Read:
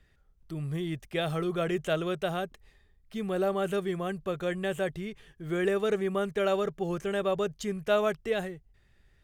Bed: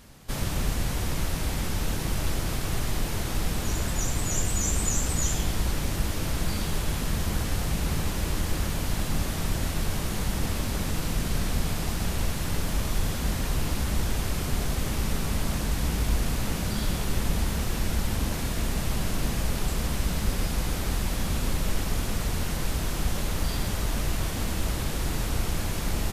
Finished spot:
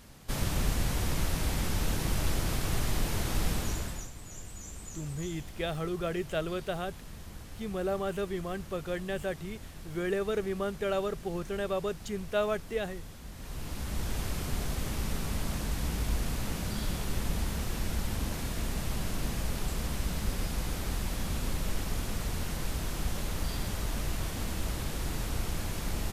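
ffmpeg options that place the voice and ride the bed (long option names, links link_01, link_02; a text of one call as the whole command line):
ffmpeg -i stem1.wav -i stem2.wav -filter_complex "[0:a]adelay=4450,volume=-3.5dB[link_01];[1:a]volume=10.5dB,afade=type=out:start_time=3.51:duration=0.59:silence=0.158489,afade=type=in:start_time=13.32:duration=0.88:silence=0.237137[link_02];[link_01][link_02]amix=inputs=2:normalize=0" out.wav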